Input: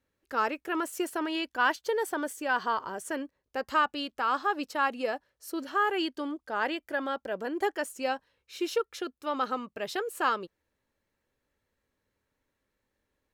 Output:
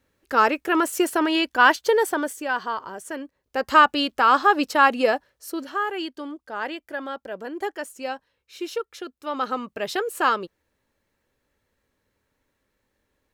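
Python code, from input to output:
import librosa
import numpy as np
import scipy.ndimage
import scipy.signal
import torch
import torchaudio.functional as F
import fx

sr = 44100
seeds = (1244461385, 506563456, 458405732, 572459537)

y = fx.gain(x, sr, db=fx.line((1.95, 10.0), (2.65, 1.0), (3.2, 1.0), (3.78, 11.0), (5.09, 11.0), (5.87, 0.0), (9.07, 0.0), (9.7, 6.5)))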